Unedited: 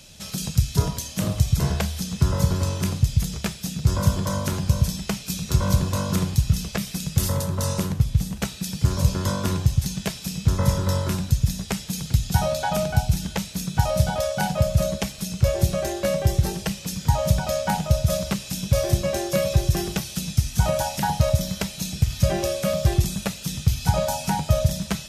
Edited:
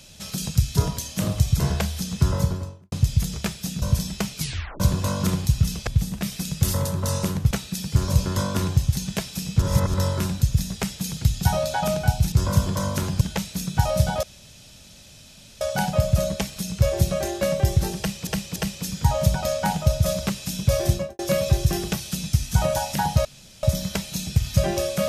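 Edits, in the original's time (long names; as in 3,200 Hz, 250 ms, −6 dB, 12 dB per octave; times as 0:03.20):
0:02.27–0:02.92: fade out and dull
0:03.82–0:04.71: move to 0:13.21
0:05.26: tape stop 0.43 s
0:08.06–0:08.40: move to 0:06.76
0:10.51–0:10.83: reverse
0:14.23: splice in room tone 1.38 s
0:16.60–0:16.89: repeat, 3 plays
0:18.96–0:19.23: fade out and dull
0:21.29: splice in room tone 0.38 s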